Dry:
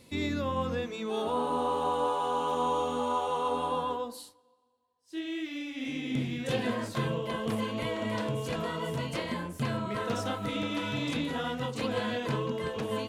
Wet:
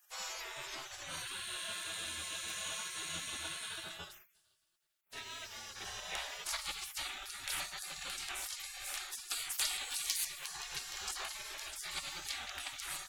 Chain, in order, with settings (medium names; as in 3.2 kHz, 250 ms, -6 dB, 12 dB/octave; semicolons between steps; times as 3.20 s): spectral gate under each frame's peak -30 dB weak; 9.30–10.25 s: treble shelf 3.7 kHz +10 dB; trim +10.5 dB